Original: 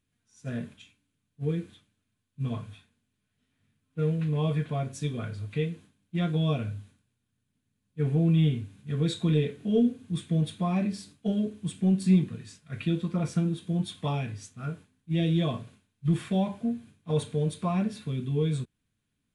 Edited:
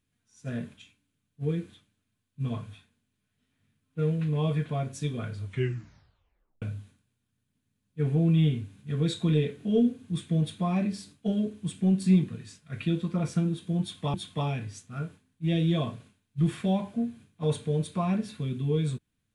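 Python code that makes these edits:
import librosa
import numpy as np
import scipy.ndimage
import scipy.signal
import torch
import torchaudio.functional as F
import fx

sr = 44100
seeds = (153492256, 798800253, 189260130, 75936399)

y = fx.edit(x, sr, fx.tape_stop(start_s=5.42, length_s=1.2),
    fx.repeat(start_s=13.81, length_s=0.33, count=2), tone=tone)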